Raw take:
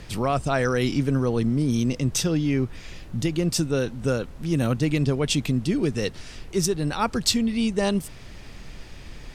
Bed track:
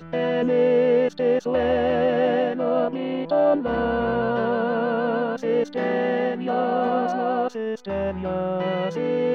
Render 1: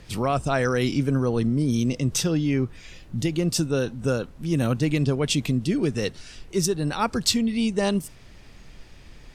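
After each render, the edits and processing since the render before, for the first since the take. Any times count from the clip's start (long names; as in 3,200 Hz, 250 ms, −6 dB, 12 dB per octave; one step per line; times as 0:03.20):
noise reduction from a noise print 6 dB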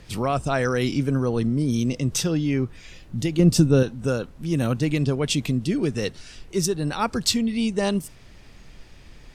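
0:03.39–0:03.83: low-shelf EQ 420 Hz +10.5 dB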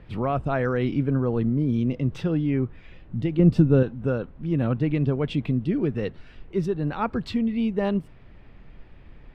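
high-frequency loss of the air 500 metres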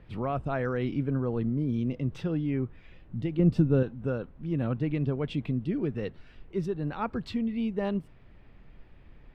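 level −5.5 dB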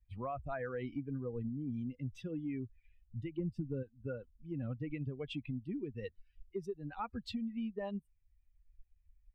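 spectral dynamics exaggerated over time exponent 2
downward compressor 6 to 1, threshold −36 dBFS, peak gain reduction 16 dB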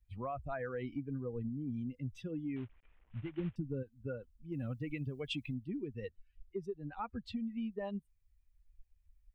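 0:02.56–0:03.56: variable-slope delta modulation 16 kbit/s
0:04.52–0:05.54: high-shelf EQ 2,900 Hz +11.5 dB
0:06.05–0:07.36: high-shelf EQ 4,000 Hz −9 dB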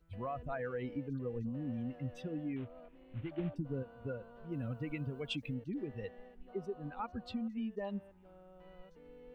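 mix in bed track −33 dB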